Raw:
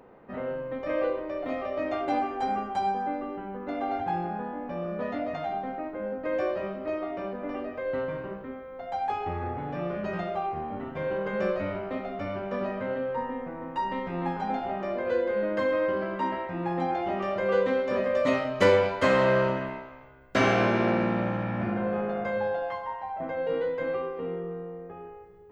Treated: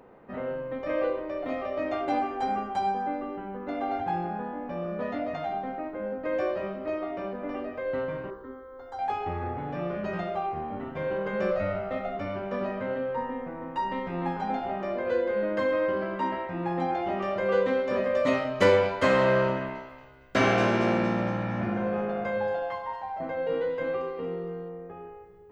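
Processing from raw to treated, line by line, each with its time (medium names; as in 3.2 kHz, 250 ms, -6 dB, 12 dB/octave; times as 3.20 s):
8.30–8.99 s: static phaser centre 670 Hz, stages 6
11.51–12.17 s: comb 1.5 ms
19.52–24.69 s: feedback echo behind a high-pass 230 ms, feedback 47%, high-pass 4.6 kHz, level -3.5 dB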